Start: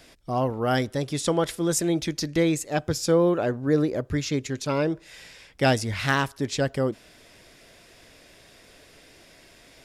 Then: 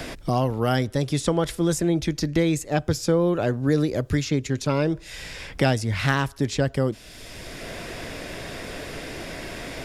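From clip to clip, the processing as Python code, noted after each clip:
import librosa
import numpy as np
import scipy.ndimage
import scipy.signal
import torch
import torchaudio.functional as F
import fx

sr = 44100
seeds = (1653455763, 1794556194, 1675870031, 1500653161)

y = fx.low_shelf(x, sr, hz=110.0, db=12.0)
y = fx.band_squash(y, sr, depth_pct=70)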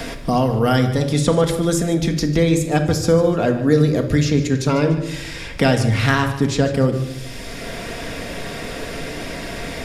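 y = fx.echo_feedback(x, sr, ms=148, feedback_pct=38, wet_db=-14.5)
y = fx.room_shoebox(y, sr, seeds[0], volume_m3=2000.0, walls='furnished', distance_m=1.7)
y = F.gain(torch.from_numpy(y), 4.0).numpy()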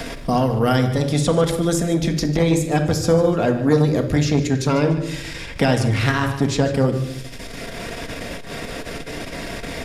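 y = fx.transformer_sat(x, sr, knee_hz=410.0)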